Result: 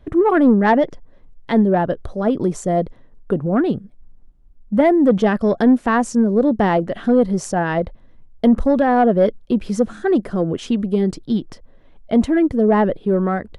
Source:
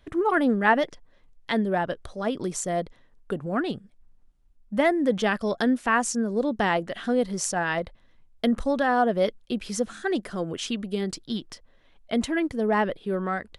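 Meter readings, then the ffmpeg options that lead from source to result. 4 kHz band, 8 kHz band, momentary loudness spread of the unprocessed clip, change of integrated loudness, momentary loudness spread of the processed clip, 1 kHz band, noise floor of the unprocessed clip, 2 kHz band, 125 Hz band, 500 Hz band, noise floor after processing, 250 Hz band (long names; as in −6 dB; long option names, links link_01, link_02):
−2.5 dB, −3.5 dB, 10 LU, +8.5 dB, 8 LU, +5.5 dB, −59 dBFS, +0.5 dB, +11.5 dB, +8.5 dB, −47 dBFS, +10.5 dB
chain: -af "tiltshelf=frequency=1200:gain=8,acontrast=72,volume=-2.5dB"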